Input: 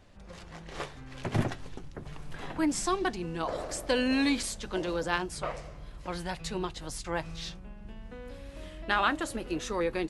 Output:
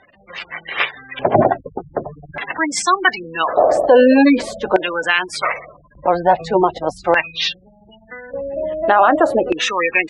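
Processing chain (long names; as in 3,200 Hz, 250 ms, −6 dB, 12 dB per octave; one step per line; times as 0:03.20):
gate on every frequency bin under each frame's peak −20 dB strong
auto-filter band-pass square 0.42 Hz 680–2,400 Hz
boost into a limiter +30.5 dB
level −1 dB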